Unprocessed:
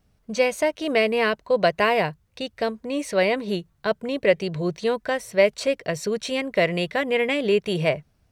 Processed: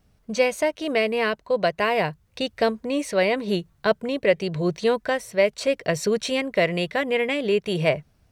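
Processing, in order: vocal rider within 4 dB 0.5 s

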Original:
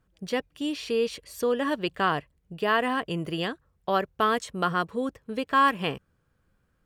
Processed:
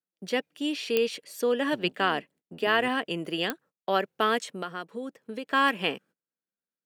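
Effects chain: 1.72–2.88 octaver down 1 oct, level 0 dB; gate -52 dBFS, range -25 dB; HPF 200 Hz 24 dB/oct; bell 1100 Hz -5.5 dB 0.35 oct; 4.41–5.49 compressor 3:1, threshold -34 dBFS, peak gain reduction 10 dB; dynamic EQ 2600 Hz, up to +4 dB, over -42 dBFS, Q 1.4; pops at 0.97/3.5, -11 dBFS

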